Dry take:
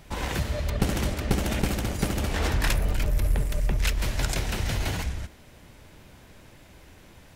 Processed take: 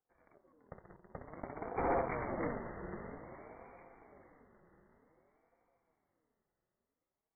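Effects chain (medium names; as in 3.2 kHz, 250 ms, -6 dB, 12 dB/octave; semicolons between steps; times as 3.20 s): local Wiener filter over 25 samples; Doppler pass-by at 1.92 s, 42 m/s, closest 2.1 m; high-pass 72 Hz 24 dB/octave; tilt shelf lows -3 dB; waveshaping leveller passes 2; echo that smears into a reverb 541 ms, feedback 44%, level -8 dB; hard clipper -27 dBFS, distortion -11 dB; brick-wall FIR low-pass 1.8 kHz; ring modulator with a swept carrier 440 Hz, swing 40%, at 0.53 Hz; trim +1.5 dB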